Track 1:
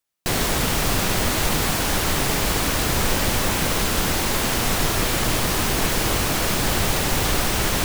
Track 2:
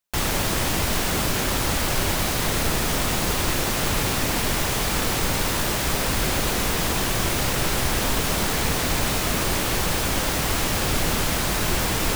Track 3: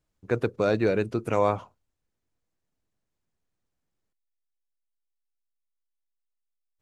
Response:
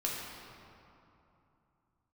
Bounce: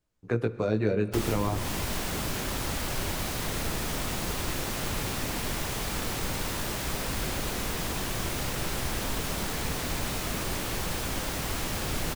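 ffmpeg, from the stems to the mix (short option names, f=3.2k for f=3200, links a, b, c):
-filter_complex "[1:a]adelay=1000,volume=-7.5dB[a];[2:a]flanger=delay=17:depth=3.6:speed=0.3,volume=2dB,asplit=2[b][c];[c]volume=-17.5dB[d];[3:a]atrim=start_sample=2205[e];[d][e]afir=irnorm=-1:irlink=0[f];[a][b][f]amix=inputs=3:normalize=0,acrossover=split=380[g][h];[h]acompressor=threshold=-30dB:ratio=6[i];[g][i]amix=inputs=2:normalize=0"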